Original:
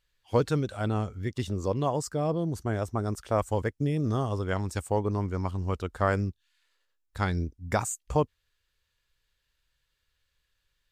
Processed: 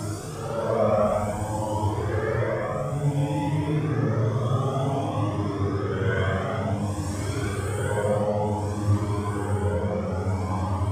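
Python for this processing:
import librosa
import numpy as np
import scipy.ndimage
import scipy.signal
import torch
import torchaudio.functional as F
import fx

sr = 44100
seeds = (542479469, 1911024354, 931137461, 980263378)

y = fx.echo_feedback(x, sr, ms=353, feedback_pct=60, wet_db=-6.0)
y = fx.paulstretch(y, sr, seeds[0], factor=4.6, window_s=0.25, from_s=3.16)
y = fx.comb_cascade(y, sr, direction='rising', hz=0.55)
y = F.gain(torch.from_numpy(y), 6.5).numpy()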